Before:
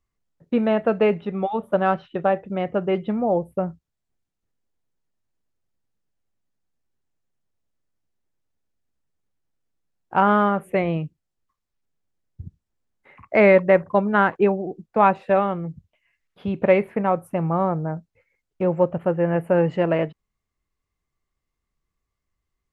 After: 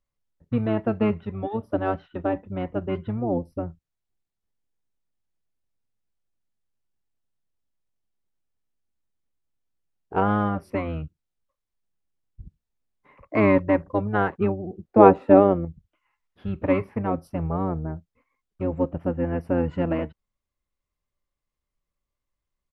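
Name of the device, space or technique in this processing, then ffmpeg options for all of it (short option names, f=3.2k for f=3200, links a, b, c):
octave pedal: -filter_complex "[0:a]asplit=2[a][b];[b]asetrate=22050,aresample=44100,atempo=2,volume=0dB[c];[a][c]amix=inputs=2:normalize=0,asettb=1/sr,asplit=3[d][e][f];[d]atrim=end=14.734[g];[e]atrim=start=14.73:end=15.65,asetpts=PTS-STARTPTS,afade=t=in:d=0.004:c=qsin,afade=t=out:st=0.916:d=0.004:c=qsin,equalizer=f=440:w=0.5:g=11[h];[f]atrim=start=15.646[i];[g][h]acrossfade=d=0.004:c1=hsin:c2=qsin[j];[j][i]acrossfade=d=0.004:c1=qsin:c2=hsin,volume=-7.5dB"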